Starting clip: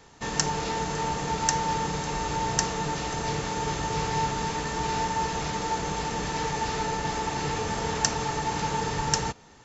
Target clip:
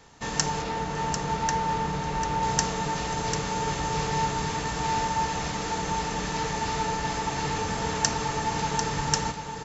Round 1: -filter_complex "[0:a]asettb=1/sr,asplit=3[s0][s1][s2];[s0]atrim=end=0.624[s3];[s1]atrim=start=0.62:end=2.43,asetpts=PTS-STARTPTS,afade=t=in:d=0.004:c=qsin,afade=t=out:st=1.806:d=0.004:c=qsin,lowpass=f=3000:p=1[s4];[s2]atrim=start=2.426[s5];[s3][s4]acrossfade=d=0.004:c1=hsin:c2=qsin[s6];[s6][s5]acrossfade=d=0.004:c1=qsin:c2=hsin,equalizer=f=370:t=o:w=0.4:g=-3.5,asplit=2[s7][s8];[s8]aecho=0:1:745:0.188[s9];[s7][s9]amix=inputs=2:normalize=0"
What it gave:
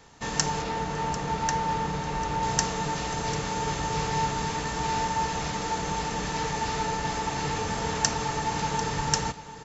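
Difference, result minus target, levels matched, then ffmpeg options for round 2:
echo-to-direct -7 dB
-filter_complex "[0:a]asettb=1/sr,asplit=3[s0][s1][s2];[s0]atrim=end=0.624[s3];[s1]atrim=start=0.62:end=2.43,asetpts=PTS-STARTPTS,afade=t=in:d=0.004:c=qsin,afade=t=out:st=1.806:d=0.004:c=qsin,lowpass=f=3000:p=1[s4];[s2]atrim=start=2.426[s5];[s3][s4]acrossfade=d=0.004:c1=hsin:c2=qsin[s6];[s6][s5]acrossfade=d=0.004:c1=qsin:c2=hsin,equalizer=f=370:t=o:w=0.4:g=-3.5,asplit=2[s7][s8];[s8]aecho=0:1:745:0.422[s9];[s7][s9]amix=inputs=2:normalize=0"

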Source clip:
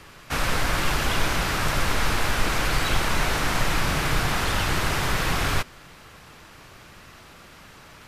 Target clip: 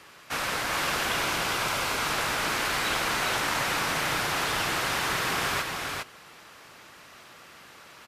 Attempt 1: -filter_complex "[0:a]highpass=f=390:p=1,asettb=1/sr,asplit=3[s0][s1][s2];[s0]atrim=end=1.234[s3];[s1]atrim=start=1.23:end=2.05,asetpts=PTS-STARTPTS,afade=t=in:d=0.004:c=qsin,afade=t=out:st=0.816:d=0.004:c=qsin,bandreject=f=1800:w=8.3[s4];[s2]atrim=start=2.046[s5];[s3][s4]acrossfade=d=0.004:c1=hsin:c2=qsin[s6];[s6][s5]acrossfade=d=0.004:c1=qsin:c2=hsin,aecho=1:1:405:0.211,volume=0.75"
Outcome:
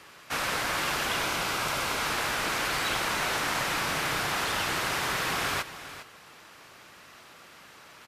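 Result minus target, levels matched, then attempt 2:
echo-to-direct -10 dB
-filter_complex "[0:a]highpass=f=390:p=1,asettb=1/sr,asplit=3[s0][s1][s2];[s0]atrim=end=1.234[s3];[s1]atrim=start=1.23:end=2.05,asetpts=PTS-STARTPTS,afade=t=in:d=0.004:c=qsin,afade=t=out:st=0.816:d=0.004:c=qsin,bandreject=f=1800:w=8.3[s4];[s2]atrim=start=2.046[s5];[s3][s4]acrossfade=d=0.004:c1=hsin:c2=qsin[s6];[s6][s5]acrossfade=d=0.004:c1=qsin:c2=hsin,aecho=1:1:405:0.668,volume=0.75"

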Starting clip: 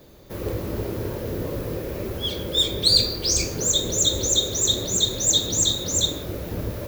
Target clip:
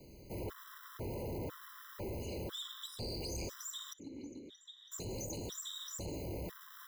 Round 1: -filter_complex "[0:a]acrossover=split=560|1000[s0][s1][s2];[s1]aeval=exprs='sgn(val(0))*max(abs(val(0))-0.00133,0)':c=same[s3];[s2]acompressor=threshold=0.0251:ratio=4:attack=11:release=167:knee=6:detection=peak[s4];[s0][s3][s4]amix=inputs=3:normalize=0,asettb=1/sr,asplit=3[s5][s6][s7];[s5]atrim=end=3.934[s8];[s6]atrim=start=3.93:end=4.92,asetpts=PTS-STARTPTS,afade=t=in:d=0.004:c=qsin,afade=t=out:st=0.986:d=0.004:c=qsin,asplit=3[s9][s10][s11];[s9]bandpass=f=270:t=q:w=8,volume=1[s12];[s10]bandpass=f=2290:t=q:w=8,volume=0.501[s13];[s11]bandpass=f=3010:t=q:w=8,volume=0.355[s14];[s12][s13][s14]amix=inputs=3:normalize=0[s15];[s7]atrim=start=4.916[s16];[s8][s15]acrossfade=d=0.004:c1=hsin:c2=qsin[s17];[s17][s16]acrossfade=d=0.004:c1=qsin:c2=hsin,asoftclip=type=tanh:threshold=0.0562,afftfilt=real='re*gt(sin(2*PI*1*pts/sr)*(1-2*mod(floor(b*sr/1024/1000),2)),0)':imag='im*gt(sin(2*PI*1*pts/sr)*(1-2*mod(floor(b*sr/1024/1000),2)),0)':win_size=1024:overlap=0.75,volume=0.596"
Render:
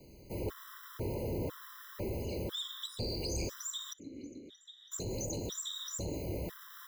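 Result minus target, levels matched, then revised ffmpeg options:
saturation: distortion -7 dB
-filter_complex "[0:a]acrossover=split=560|1000[s0][s1][s2];[s1]aeval=exprs='sgn(val(0))*max(abs(val(0))-0.00133,0)':c=same[s3];[s2]acompressor=threshold=0.0251:ratio=4:attack=11:release=167:knee=6:detection=peak[s4];[s0][s3][s4]amix=inputs=3:normalize=0,asettb=1/sr,asplit=3[s5][s6][s7];[s5]atrim=end=3.934[s8];[s6]atrim=start=3.93:end=4.92,asetpts=PTS-STARTPTS,afade=t=in:d=0.004:c=qsin,afade=t=out:st=0.986:d=0.004:c=qsin,asplit=3[s9][s10][s11];[s9]bandpass=f=270:t=q:w=8,volume=1[s12];[s10]bandpass=f=2290:t=q:w=8,volume=0.501[s13];[s11]bandpass=f=3010:t=q:w=8,volume=0.355[s14];[s12][s13][s14]amix=inputs=3:normalize=0[s15];[s7]atrim=start=4.916[s16];[s8][s15]acrossfade=d=0.004:c1=hsin:c2=qsin[s17];[s17][s16]acrossfade=d=0.004:c1=qsin:c2=hsin,asoftclip=type=tanh:threshold=0.0224,afftfilt=real='re*gt(sin(2*PI*1*pts/sr)*(1-2*mod(floor(b*sr/1024/1000),2)),0)':imag='im*gt(sin(2*PI*1*pts/sr)*(1-2*mod(floor(b*sr/1024/1000),2)),0)':win_size=1024:overlap=0.75,volume=0.596"

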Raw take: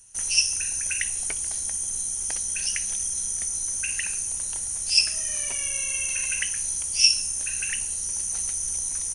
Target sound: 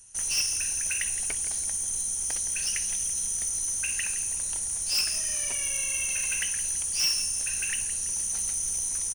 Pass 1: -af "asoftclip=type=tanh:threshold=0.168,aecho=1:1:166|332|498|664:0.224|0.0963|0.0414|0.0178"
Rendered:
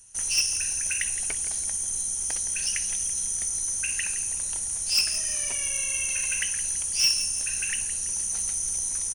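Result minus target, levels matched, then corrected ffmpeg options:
saturation: distortion -4 dB
-af "asoftclip=type=tanh:threshold=0.0841,aecho=1:1:166|332|498|664:0.224|0.0963|0.0414|0.0178"

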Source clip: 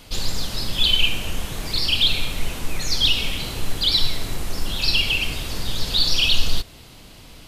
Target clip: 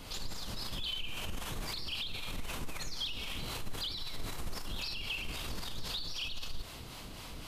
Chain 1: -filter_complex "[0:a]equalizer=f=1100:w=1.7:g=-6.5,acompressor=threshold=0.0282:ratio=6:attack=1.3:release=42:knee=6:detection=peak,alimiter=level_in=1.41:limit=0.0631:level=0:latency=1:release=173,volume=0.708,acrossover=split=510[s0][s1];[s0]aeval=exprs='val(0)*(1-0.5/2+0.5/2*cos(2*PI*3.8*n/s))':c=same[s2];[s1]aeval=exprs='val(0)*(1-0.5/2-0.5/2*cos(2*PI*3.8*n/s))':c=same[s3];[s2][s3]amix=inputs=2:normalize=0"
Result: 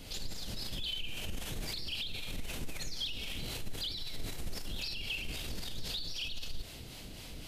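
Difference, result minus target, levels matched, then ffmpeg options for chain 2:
1 kHz band -6.5 dB
-filter_complex "[0:a]equalizer=f=1100:w=1.7:g=4.5,acompressor=threshold=0.0282:ratio=6:attack=1.3:release=42:knee=6:detection=peak,alimiter=level_in=1.41:limit=0.0631:level=0:latency=1:release=173,volume=0.708,acrossover=split=510[s0][s1];[s0]aeval=exprs='val(0)*(1-0.5/2+0.5/2*cos(2*PI*3.8*n/s))':c=same[s2];[s1]aeval=exprs='val(0)*(1-0.5/2-0.5/2*cos(2*PI*3.8*n/s))':c=same[s3];[s2][s3]amix=inputs=2:normalize=0"

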